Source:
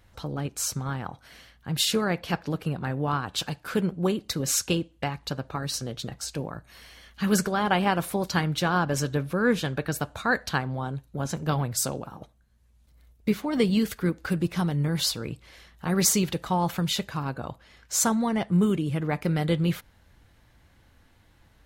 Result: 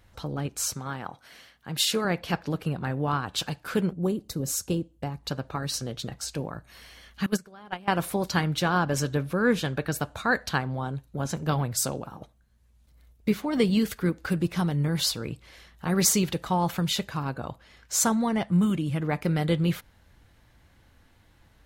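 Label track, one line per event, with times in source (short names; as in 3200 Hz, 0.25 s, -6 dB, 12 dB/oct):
0.740000	2.050000	HPF 250 Hz 6 dB/oct
3.930000	5.250000	bell 2300 Hz -13 dB 2.7 oct
7.260000	7.880000	gate -20 dBFS, range -22 dB
18.410000	18.990000	bell 410 Hz -14.5 dB 0.21 oct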